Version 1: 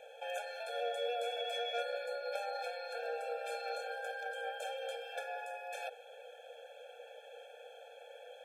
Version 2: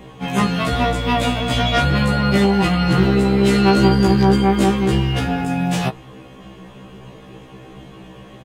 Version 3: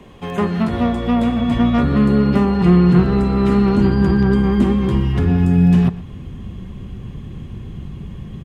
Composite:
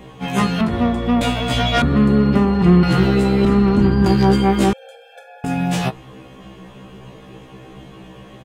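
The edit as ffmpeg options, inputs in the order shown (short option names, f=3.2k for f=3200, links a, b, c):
-filter_complex "[2:a]asplit=3[a][b][c];[1:a]asplit=5[d][e][f][g][h];[d]atrim=end=0.612[i];[a]atrim=start=0.608:end=1.212[j];[e]atrim=start=1.208:end=1.822[k];[b]atrim=start=1.818:end=2.832[l];[f]atrim=start=2.828:end=3.452[m];[c]atrim=start=3.448:end=4.062[n];[g]atrim=start=4.058:end=4.732[o];[0:a]atrim=start=4.728:end=5.442[p];[h]atrim=start=5.438[q];[i][j]acrossfade=d=0.004:c1=hsin:c2=hsin[r];[r][k]acrossfade=d=0.004:c1=hsin:c2=hsin[s];[s][l]acrossfade=d=0.004:c1=hsin:c2=hsin[t];[t][m]acrossfade=d=0.004:c1=hsin:c2=hsin[u];[u][n]acrossfade=d=0.004:c1=hsin:c2=hsin[v];[v][o]acrossfade=d=0.004:c1=hsin:c2=hsin[w];[w][p]acrossfade=d=0.004:c1=hsin:c2=hsin[x];[x][q]acrossfade=d=0.004:c1=hsin:c2=hsin"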